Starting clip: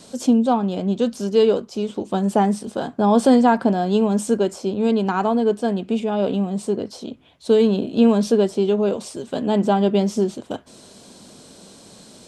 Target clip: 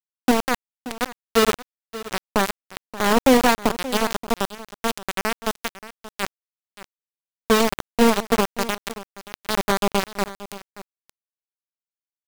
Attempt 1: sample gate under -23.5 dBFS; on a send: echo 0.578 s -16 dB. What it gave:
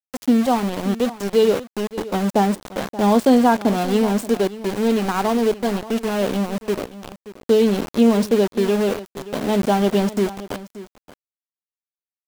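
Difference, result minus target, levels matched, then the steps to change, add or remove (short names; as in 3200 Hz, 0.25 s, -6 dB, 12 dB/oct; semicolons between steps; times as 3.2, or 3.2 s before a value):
sample gate: distortion -16 dB
change: sample gate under -11.5 dBFS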